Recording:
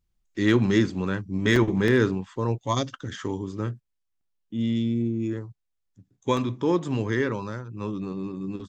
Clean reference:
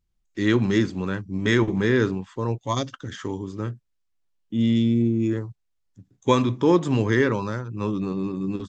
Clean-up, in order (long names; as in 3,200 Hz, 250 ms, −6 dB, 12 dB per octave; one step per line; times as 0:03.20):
clipped peaks rebuilt −10 dBFS
repair the gap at 0:01.56/0:01.88/0:04.21/0:06.37, 2 ms
level correction +5 dB, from 0:03.80